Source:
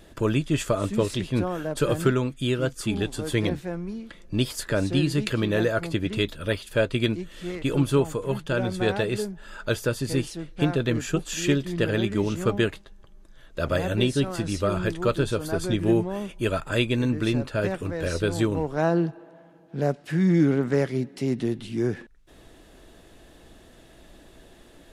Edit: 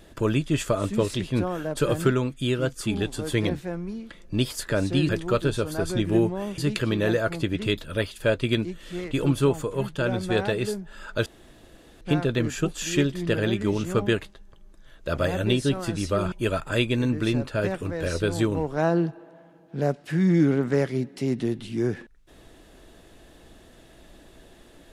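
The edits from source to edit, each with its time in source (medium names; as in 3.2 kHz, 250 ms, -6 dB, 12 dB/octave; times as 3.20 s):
9.77–10.52 s: room tone
14.83–16.32 s: move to 5.09 s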